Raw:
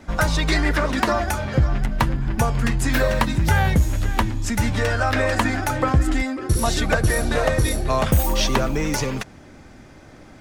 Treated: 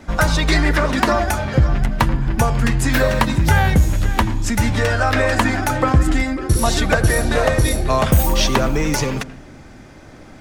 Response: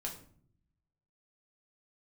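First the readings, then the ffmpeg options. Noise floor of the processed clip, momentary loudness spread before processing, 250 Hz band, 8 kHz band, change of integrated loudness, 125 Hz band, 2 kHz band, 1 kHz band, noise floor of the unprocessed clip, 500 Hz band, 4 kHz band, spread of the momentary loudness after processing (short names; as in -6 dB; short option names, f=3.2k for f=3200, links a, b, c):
-41 dBFS, 4 LU, +3.5 dB, +3.5 dB, +3.5 dB, +3.5 dB, +3.5 dB, +3.5 dB, -45 dBFS, +3.5 dB, +3.5 dB, 4 LU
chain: -filter_complex "[0:a]asplit=2[a][b];[1:a]atrim=start_sample=2205,lowpass=3.1k,adelay=83[c];[b][c]afir=irnorm=-1:irlink=0,volume=-15dB[d];[a][d]amix=inputs=2:normalize=0,volume=3.5dB"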